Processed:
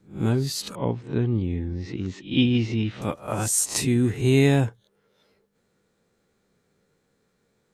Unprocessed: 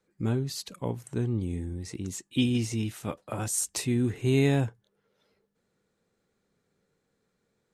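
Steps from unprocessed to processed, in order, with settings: reverse spectral sustain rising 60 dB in 0.32 s; 0.75–3.02 s: low-pass 4 kHz 24 dB/octave; trim +5 dB

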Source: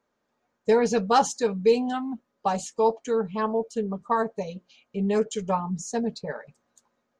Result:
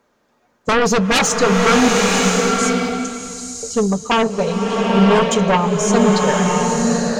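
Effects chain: 1.88–3.63 s: inverse Chebyshev band-stop 230–2100 Hz, stop band 50 dB; sine folder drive 12 dB, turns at -9 dBFS; swelling reverb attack 1030 ms, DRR -1 dB; trim -2 dB

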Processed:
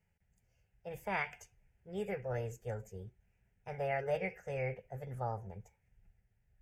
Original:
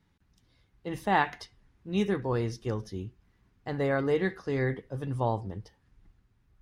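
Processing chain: formant shift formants +4 st; static phaser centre 1.1 kHz, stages 6; trim -6 dB

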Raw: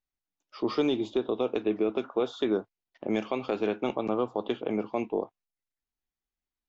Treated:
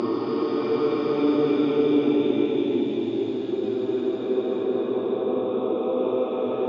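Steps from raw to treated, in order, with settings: treble shelf 2.1 kHz -10 dB; Paulstretch 8.1×, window 0.50 s, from 0.64 s; band-pass 100–6000 Hz; trim +5 dB

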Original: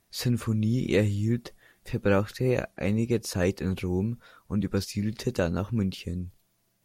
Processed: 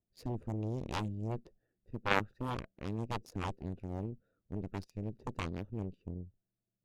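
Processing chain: local Wiener filter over 41 samples; rotary cabinet horn 1.2 Hz; Chebyshev shaper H 2 -15 dB, 3 -8 dB, 6 -26 dB, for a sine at -11 dBFS; trim +2.5 dB

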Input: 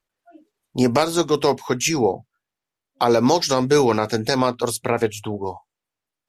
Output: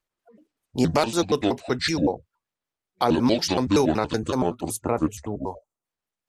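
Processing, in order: pitch shift switched off and on -6.5 st, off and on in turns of 94 ms; time-frequency box 4.20–5.84 s, 1.4–5.9 kHz -9 dB; trim -3 dB

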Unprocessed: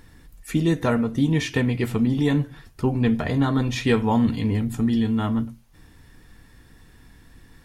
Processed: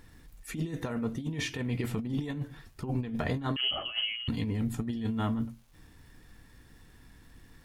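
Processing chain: crackle 540 per s -52 dBFS; 3.56–4.28 s: frequency inversion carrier 3.1 kHz; compressor with a negative ratio -23 dBFS, ratio -0.5; trim -8 dB

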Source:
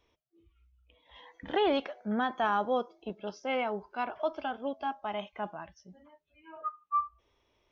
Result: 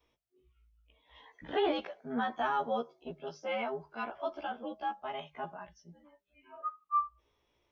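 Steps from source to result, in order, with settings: short-time spectra conjugated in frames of 34 ms; hum notches 50/100/150/200 Hz

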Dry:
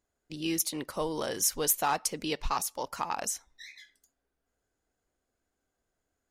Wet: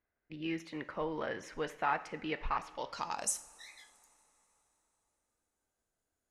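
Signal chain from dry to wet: low-pass sweep 2 kHz -> 11 kHz, 2.58–3.36 s; two-slope reverb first 0.5 s, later 3.9 s, from -18 dB, DRR 10.5 dB; trim -6 dB

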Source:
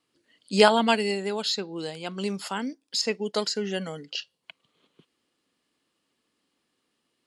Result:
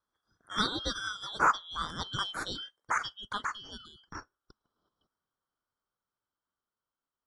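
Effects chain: four frequency bands reordered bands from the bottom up 3412; Doppler pass-by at 2.09 s, 10 m/s, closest 4.7 m; resonant high shelf 1.8 kHz -9.5 dB, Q 3; trim +5.5 dB

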